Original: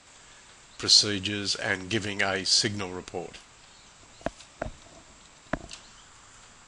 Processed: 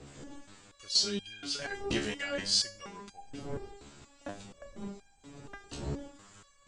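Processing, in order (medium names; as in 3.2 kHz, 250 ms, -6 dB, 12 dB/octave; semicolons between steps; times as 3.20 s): wind noise 320 Hz -38 dBFS; resonator arpeggio 4.2 Hz 71–800 Hz; trim +4.5 dB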